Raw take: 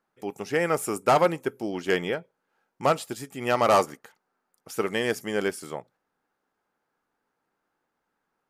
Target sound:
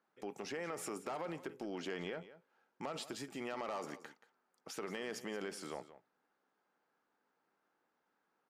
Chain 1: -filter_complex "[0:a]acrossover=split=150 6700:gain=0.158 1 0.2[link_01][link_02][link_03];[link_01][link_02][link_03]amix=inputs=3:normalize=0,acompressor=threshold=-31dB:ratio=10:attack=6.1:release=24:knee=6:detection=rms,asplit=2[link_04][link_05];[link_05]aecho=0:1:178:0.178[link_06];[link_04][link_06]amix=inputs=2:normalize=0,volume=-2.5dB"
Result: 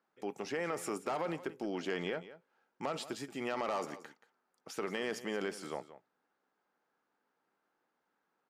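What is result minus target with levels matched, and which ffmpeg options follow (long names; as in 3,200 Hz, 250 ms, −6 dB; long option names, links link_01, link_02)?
downward compressor: peak gain reduction −6 dB
-filter_complex "[0:a]acrossover=split=150 6700:gain=0.158 1 0.2[link_01][link_02][link_03];[link_01][link_02][link_03]amix=inputs=3:normalize=0,acompressor=threshold=-37.5dB:ratio=10:attack=6.1:release=24:knee=6:detection=rms,asplit=2[link_04][link_05];[link_05]aecho=0:1:178:0.178[link_06];[link_04][link_06]amix=inputs=2:normalize=0,volume=-2.5dB"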